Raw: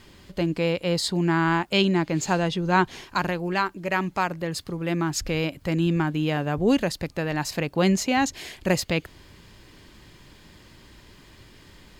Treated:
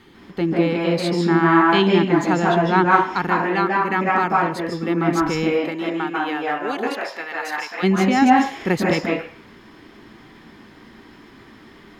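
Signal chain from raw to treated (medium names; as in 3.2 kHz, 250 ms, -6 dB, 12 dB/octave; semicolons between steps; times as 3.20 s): 5.55–7.82 s: high-pass 390 Hz -> 1.2 kHz 12 dB/octave; reverberation RT60 0.50 s, pre-delay 139 ms, DRR -3 dB; trim -5.5 dB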